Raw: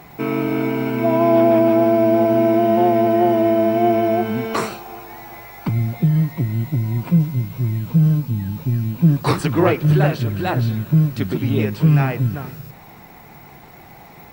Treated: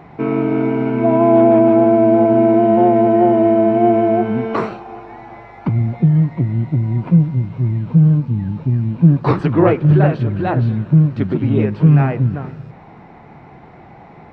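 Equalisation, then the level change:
head-to-tape spacing loss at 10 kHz 38 dB
low-shelf EQ 71 Hz −7 dB
+5.5 dB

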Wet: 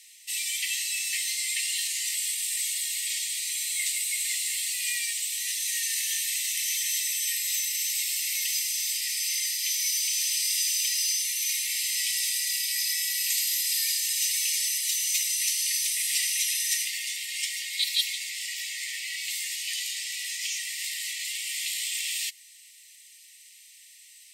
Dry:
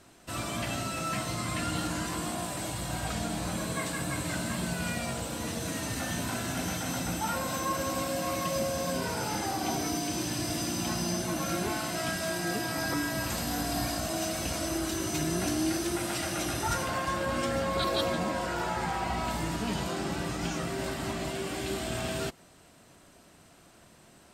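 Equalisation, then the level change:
linear-phase brick-wall high-pass 1,800 Hz
spectral tilt +2.5 dB per octave
+4.0 dB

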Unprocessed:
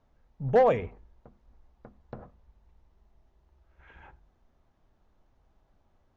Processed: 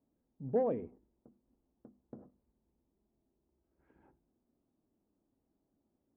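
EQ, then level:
resonant band-pass 280 Hz, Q 2.5
0.0 dB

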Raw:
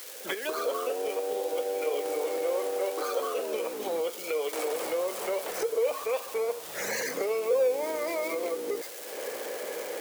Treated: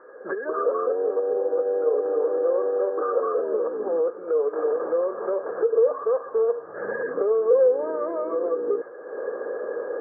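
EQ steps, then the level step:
Chebyshev low-pass with heavy ripple 1,700 Hz, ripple 9 dB
+8.5 dB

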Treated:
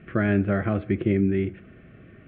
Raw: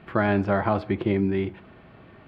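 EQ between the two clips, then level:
high-frequency loss of the air 300 metres
phaser with its sweep stopped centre 2,200 Hz, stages 4
+3.0 dB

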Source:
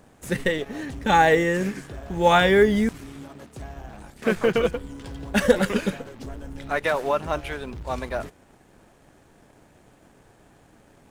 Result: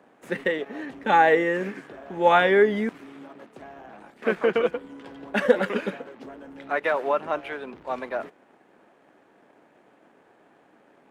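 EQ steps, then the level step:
three-way crossover with the lows and the highs turned down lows −21 dB, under 200 Hz, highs −16 dB, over 3,100 Hz
low-shelf EQ 81 Hz −11 dB
0.0 dB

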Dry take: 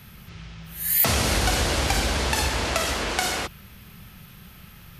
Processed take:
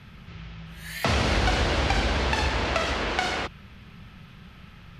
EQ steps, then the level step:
low-pass filter 3,800 Hz 12 dB per octave
0.0 dB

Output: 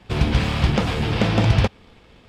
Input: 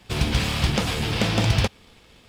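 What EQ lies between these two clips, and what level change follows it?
low-pass filter 1,900 Hz 6 dB per octave
+4.0 dB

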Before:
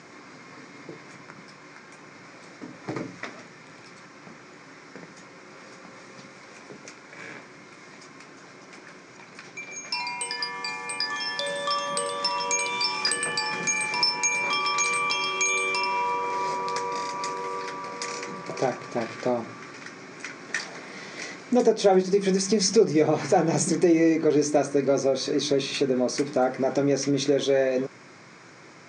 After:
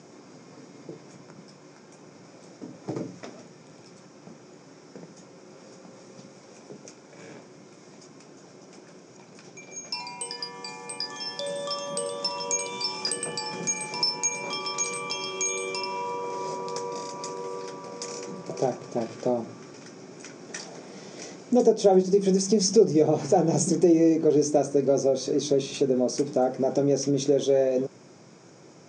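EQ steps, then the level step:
loudspeaker in its box 110–8,100 Hz, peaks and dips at 280 Hz −3 dB, 1,100 Hz −5 dB, 2,100 Hz −4 dB, 4,200 Hz −9 dB
parametric band 1,800 Hz −13.5 dB 1.5 octaves
+2.5 dB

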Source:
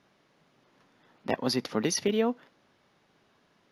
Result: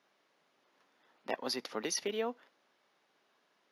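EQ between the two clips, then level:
Bessel high-pass filter 450 Hz, order 2
−5.0 dB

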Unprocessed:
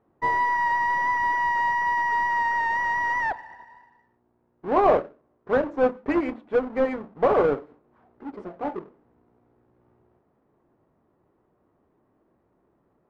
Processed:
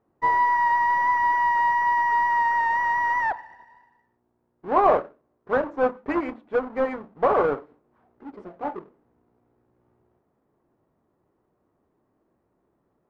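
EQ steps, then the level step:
dynamic equaliser 1,100 Hz, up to +7 dB, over −36 dBFS, Q 0.91
−3.5 dB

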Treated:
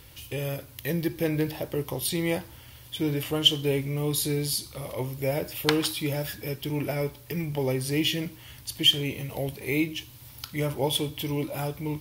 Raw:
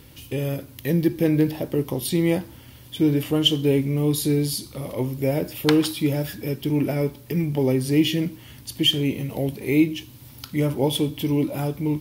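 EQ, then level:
parametric band 240 Hz −11 dB 1.6 octaves
0.0 dB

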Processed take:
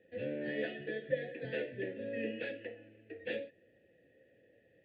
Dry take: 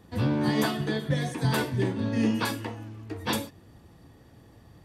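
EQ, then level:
formant filter e
low-pass filter 3,500 Hz 12 dB per octave
phaser with its sweep stopped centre 2,500 Hz, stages 4
+5.0 dB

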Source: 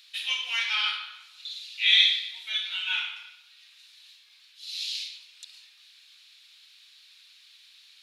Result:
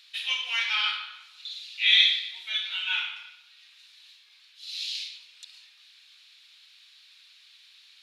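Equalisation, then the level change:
high-shelf EQ 6,300 Hz −7 dB
+1.5 dB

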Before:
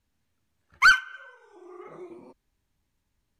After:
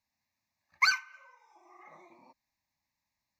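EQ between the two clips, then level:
high-pass filter 600 Hz 6 dB per octave
phaser with its sweep stopped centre 2,100 Hz, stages 8
0.0 dB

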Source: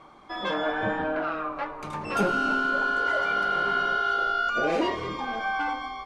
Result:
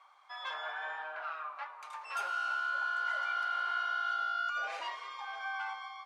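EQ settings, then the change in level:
high-pass filter 840 Hz 24 dB per octave
−8.0 dB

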